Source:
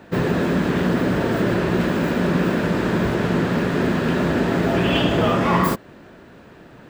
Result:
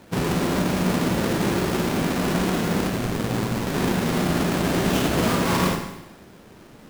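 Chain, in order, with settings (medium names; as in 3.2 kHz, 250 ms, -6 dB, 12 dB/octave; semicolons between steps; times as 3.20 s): square wave that keeps the level; 2.88–3.67 s: ring modulator 54 Hz; Schroeder reverb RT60 0.91 s, combs from 32 ms, DRR 4 dB; trim -8.5 dB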